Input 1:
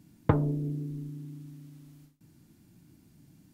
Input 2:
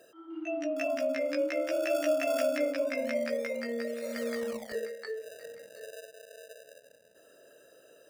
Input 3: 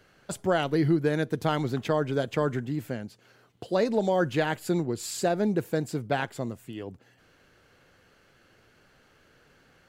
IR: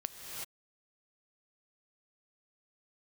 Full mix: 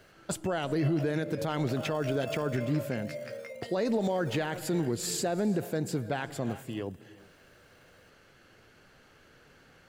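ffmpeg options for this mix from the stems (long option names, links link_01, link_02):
-filter_complex "[1:a]highpass=410,volume=-7.5dB,asplit=3[link_01][link_02][link_03];[link_01]atrim=end=5.77,asetpts=PTS-STARTPTS,afade=type=out:start_time=5.766:duration=0.004:curve=hsin[link_04];[link_02]atrim=start=5.77:end=6.45,asetpts=PTS-STARTPTS,volume=0[link_05];[link_03]atrim=start=6.45,asetpts=PTS-STARTPTS,afade=type=in:duration=0.004:curve=hsin[link_06];[link_04][link_05][link_06]concat=n=3:v=0:a=1[link_07];[2:a]volume=0.5dB,asplit=2[link_08][link_09];[link_09]volume=-14dB[link_10];[3:a]atrim=start_sample=2205[link_11];[link_10][link_11]afir=irnorm=-1:irlink=0[link_12];[link_07][link_08][link_12]amix=inputs=3:normalize=0,alimiter=limit=-20.5dB:level=0:latency=1:release=56"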